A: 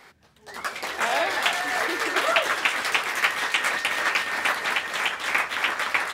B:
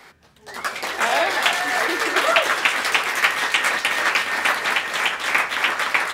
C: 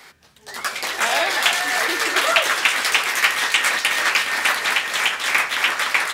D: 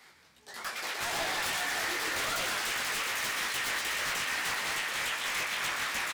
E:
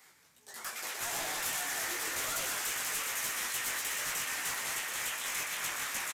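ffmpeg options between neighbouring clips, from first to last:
-filter_complex "[0:a]bandreject=f=101.7:t=h:w=4,bandreject=f=203.4:t=h:w=4,bandreject=f=305.1:t=h:w=4,bandreject=f=406.8:t=h:w=4,bandreject=f=508.5:t=h:w=4,bandreject=f=610.2:t=h:w=4,bandreject=f=711.9:t=h:w=4,bandreject=f=813.6:t=h:w=4,bandreject=f=915.3:t=h:w=4,bandreject=f=1017:t=h:w=4,bandreject=f=1118.7:t=h:w=4,bandreject=f=1220.4:t=h:w=4,bandreject=f=1322.1:t=h:w=4,bandreject=f=1423.8:t=h:w=4,bandreject=f=1525.5:t=h:w=4,bandreject=f=1627.2:t=h:w=4,bandreject=f=1728.9:t=h:w=4,bandreject=f=1830.6:t=h:w=4,bandreject=f=1932.3:t=h:w=4,bandreject=f=2034:t=h:w=4,bandreject=f=2135.7:t=h:w=4,bandreject=f=2237.4:t=h:w=4,bandreject=f=2339.1:t=h:w=4,bandreject=f=2440.8:t=h:w=4,bandreject=f=2542.5:t=h:w=4,bandreject=f=2644.2:t=h:w=4,bandreject=f=2745.9:t=h:w=4,bandreject=f=2847.6:t=h:w=4,bandreject=f=2949.3:t=h:w=4,bandreject=f=3051:t=h:w=4,bandreject=f=3152.7:t=h:w=4,acrossover=split=120[s0][s1];[s0]alimiter=level_in=59.6:limit=0.0631:level=0:latency=1,volume=0.0168[s2];[s2][s1]amix=inputs=2:normalize=0,volume=1.68"
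-filter_complex "[0:a]asplit=2[s0][s1];[s1]asoftclip=type=tanh:threshold=0.211,volume=0.422[s2];[s0][s2]amix=inputs=2:normalize=0,highshelf=f=2100:g=8.5,volume=0.531"
-filter_complex "[0:a]aeval=exprs='0.133*(abs(mod(val(0)/0.133+3,4)-2)-1)':c=same,flanger=delay=16.5:depth=5.7:speed=2.5,asplit=9[s0][s1][s2][s3][s4][s5][s6][s7][s8];[s1]adelay=122,afreqshift=89,volume=0.531[s9];[s2]adelay=244,afreqshift=178,volume=0.32[s10];[s3]adelay=366,afreqshift=267,volume=0.191[s11];[s4]adelay=488,afreqshift=356,volume=0.115[s12];[s5]adelay=610,afreqshift=445,volume=0.0692[s13];[s6]adelay=732,afreqshift=534,volume=0.0412[s14];[s7]adelay=854,afreqshift=623,volume=0.0248[s15];[s8]adelay=976,afreqshift=712,volume=0.0148[s16];[s0][s9][s10][s11][s12][s13][s14][s15][s16]amix=inputs=9:normalize=0,volume=0.398"
-af "aresample=32000,aresample=44100,flanger=delay=6.5:depth=1.7:regen=-65:speed=0.71:shape=sinusoidal,aexciter=amount=1.8:drive=8.6:freq=6100,volume=0.891"

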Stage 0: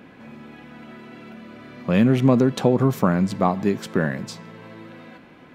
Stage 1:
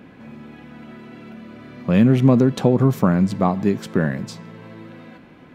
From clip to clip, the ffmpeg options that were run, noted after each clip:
-af "lowshelf=f=290:g=6,volume=0.891"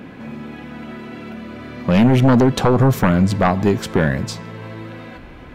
-af "asubboost=boost=12:cutoff=54,aeval=exprs='0.668*sin(PI/2*2.51*val(0)/0.668)':c=same,volume=0.631"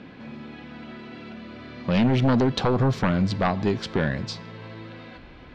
-af "lowpass=f=4500:t=q:w=2,volume=0.422"

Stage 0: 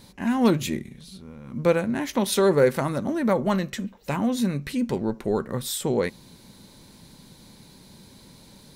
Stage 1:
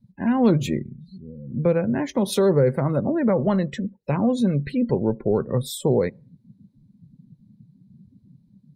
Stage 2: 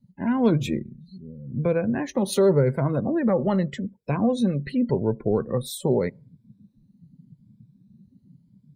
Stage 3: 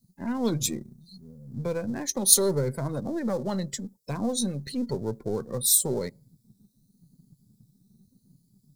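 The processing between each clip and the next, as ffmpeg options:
-filter_complex "[0:a]afftdn=nr=35:nf=-37,equalizer=f=125:t=o:w=1:g=8,equalizer=f=500:t=o:w=1:g=7,equalizer=f=8000:t=o:w=1:g=-3,acrossover=split=260[s0][s1];[s1]alimiter=limit=0.2:level=0:latency=1:release=168[s2];[s0][s2]amix=inputs=2:normalize=0"
-af "afftfilt=real='re*pow(10,8/40*sin(2*PI*(1.7*log(max(b,1)*sr/1024/100)/log(2)-(0.85)*(pts-256)/sr)))':imag='im*pow(10,8/40*sin(2*PI*(1.7*log(max(b,1)*sr/1024/100)/log(2)-(0.85)*(pts-256)/sr)))':win_size=1024:overlap=0.75,volume=0.75"
-af "aeval=exprs='if(lt(val(0),0),0.708*val(0),val(0))':c=same,aexciter=amount=13:drive=3.8:freq=4100,volume=0.531"

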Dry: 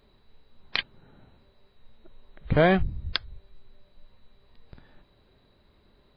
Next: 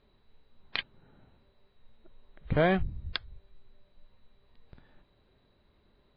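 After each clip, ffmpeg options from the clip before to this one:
-af "lowpass=f=4400:w=0.5412,lowpass=f=4400:w=1.3066,volume=0.562"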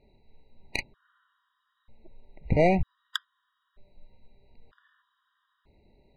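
-af "aeval=exprs='(tanh(7.94*val(0)+0.65)-tanh(0.65))/7.94':c=same,adynamicsmooth=sensitivity=3.5:basefreq=4700,afftfilt=real='re*gt(sin(2*PI*0.53*pts/sr)*(1-2*mod(floor(b*sr/1024/960),2)),0)':imag='im*gt(sin(2*PI*0.53*pts/sr)*(1-2*mod(floor(b*sr/1024/960),2)),0)':win_size=1024:overlap=0.75,volume=2.66"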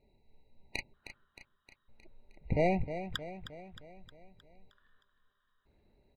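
-af "aecho=1:1:311|622|933|1244|1555|1866:0.282|0.155|0.0853|0.0469|0.0258|0.0142,volume=0.447"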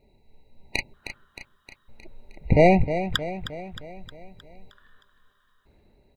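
-af "dynaudnorm=f=160:g=9:m=1.68,volume=2.51"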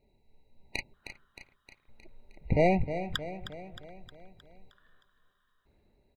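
-filter_complex "[0:a]asplit=2[s0][s1];[s1]adelay=366,lowpass=f=2200:p=1,volume=0.075,asplit=2[s2][s3];[s3]adelay=366,lowpass=f=2200:p=1,volume=0.48,asplit=2[s4][s5];[s5]adelay=366,lowpass=f=2200:p=1,volume=0.48[s6];[s0][s2][s4][s6]amix=inputs=4:normalize=0,volume=0.398"

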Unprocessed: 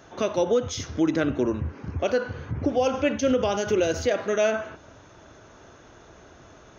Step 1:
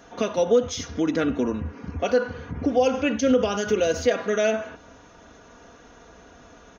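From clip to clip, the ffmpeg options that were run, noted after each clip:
-af "aecho=1:1:4.2:0.58"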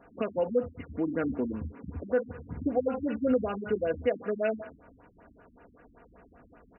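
-af "afftfilt=real='re*lt(b*sr/1024,290*pow(3000/290,0.5+0.5*sin(2*PI*5.2*pts/sr)))':imag='im*lt(b*sr/1024,290*pow(3000/290,0.5+0.5*sin(2*PI*5.2*pts/sr)))':win_size=1024:overlap=0.75,volume=0.501"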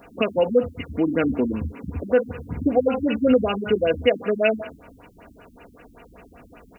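-af "aexciter=amount=5.3:drive=3.1:freq=2400,volume=2.66"

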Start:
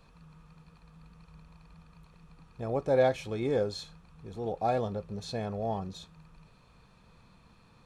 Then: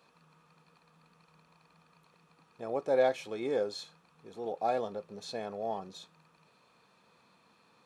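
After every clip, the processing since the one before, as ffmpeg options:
-af "highpass=290,volume=0.841"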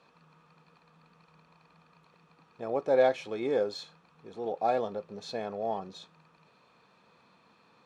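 -af "adynamicsmooth=sensitivity=3.5:basefreq=6600,volume=1.41"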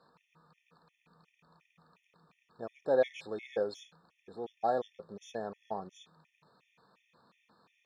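-af "afftfilt=real='re*gt(sin(2*PI*2.8*pts/sr)*(1-2*mod(floor(b*sr/1024/1800),2)),0)':imag='im*gt(sin(2*PI*2.8*pts/sr)*(1-2*mod(floor(b*sr/1024/1800),2)),0)':win_size=1024:overlap=0.75,volume=0.75"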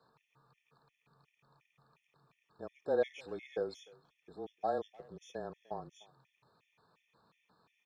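-filter_complex "[0:a]asplit=2[s0][s1];[s1]adelay=300,highpass=300,lowpass=3400,asoftclip=type=hard:threshold=0.0501,volume=0.0708[s2];[s0][s2]amix=inputs=2:normalize=0,afreqshift=-25,volume=0.631"

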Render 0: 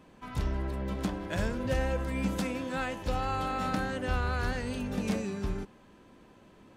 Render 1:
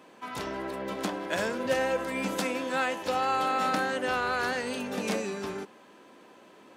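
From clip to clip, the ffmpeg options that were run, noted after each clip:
-af "highpass=340,volume=2"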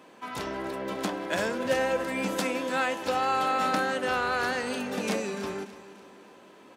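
-af "aecho=1:1:291|582|873|1164:0.168|0.0789|0.0371|0.0174,volume=1.12"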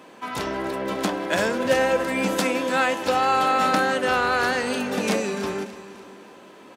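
-af "aecho=1:1:505:0.0841,volume=2"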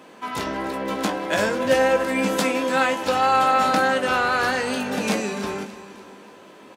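-filter_complex "[0:a]asplit=2[s0][s1];[s1]adelay=19,volume=0.447[s2];[s0][s2]amix=inputs=2:normalize=0"

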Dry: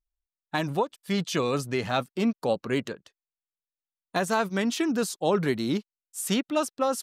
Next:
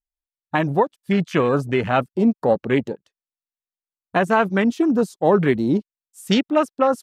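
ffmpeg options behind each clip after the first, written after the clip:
-af "afwtdn=0.02,volume=2.51"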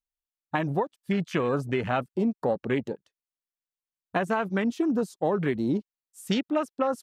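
-af "acompressor=threshold=0.141:ratio=6,volume=0.596"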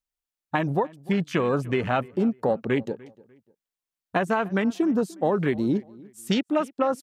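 -filter_complex "[0:a]asplit=2[s0][s1];[s1]adelay=297,lowpass=f=2600:p=1,volume=0.0794,asplit=2[s2][s3];[s3]adelay=297,lowpass=f=2600:p=1,volume=0.32[s4];[s0][s2][s4]amix=inputs=3:normalize=0,volume=1.33"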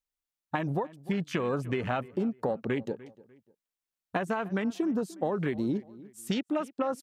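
-af "acompressor=threshold=0.0708:ratio=6,volume=0.75"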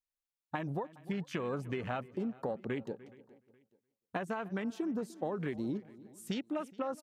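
-af "aecho=1:1:420|840:0.0708|0.0262,volume=0.473"

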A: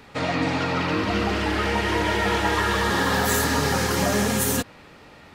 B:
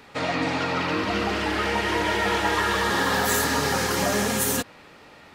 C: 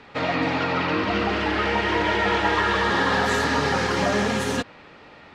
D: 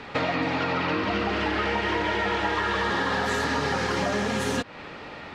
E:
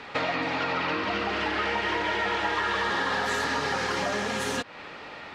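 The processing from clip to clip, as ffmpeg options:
-af "lowshelf=f=190:g=-7.5"
-af "lowpass=4100,volume=1.26"
-af "acompressor=threshold=0.0282:ratio=5,volume=2.24"
-af "lowshelf=f=360:g=-8.5"

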